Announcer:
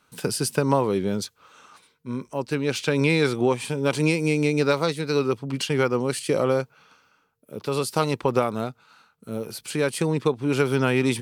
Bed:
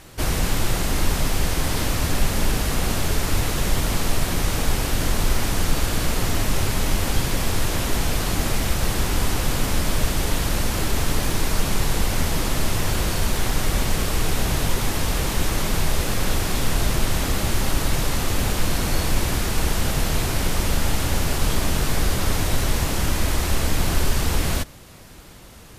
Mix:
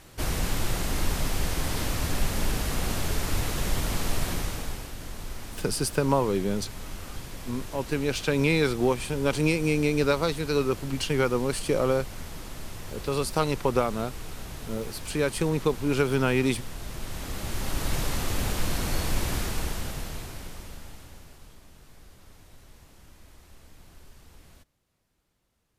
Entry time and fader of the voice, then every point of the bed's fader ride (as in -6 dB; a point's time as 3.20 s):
5.40 s, -2.5 dB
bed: 4.30 s -6 dB
4.95 s -17 dB
16.80 s -17 dB
17.94 s -6 dB
19.40 s -6 dB
21.62 s -31 dB